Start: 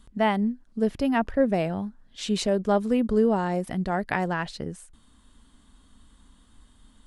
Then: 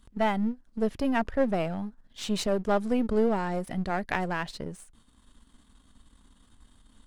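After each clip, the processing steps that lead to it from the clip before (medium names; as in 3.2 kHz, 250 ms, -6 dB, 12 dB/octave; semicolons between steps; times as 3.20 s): partial rectifier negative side -7 dB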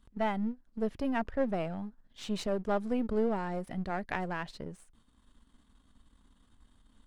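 treble shelf 4.5 kHz -6.5 dB; trim -5 dB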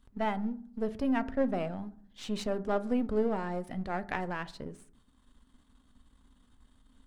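reverberation RT60 0.55 s, pre-delay 4 ms, DRR 12 dB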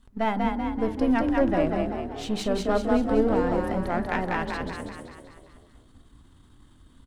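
wow and flutter 27 cents; on a send: frequency-shifting echo 192 ms, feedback 53%, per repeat +36 Hz, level -3 dB; on the sum: trim +5.5 dB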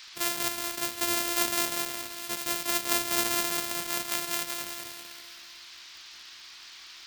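sorted samples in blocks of 128 samples; band noise 900–5100 Hz -47 dBFS; tilt EQ +4 dB/octave; trim -7.5 dB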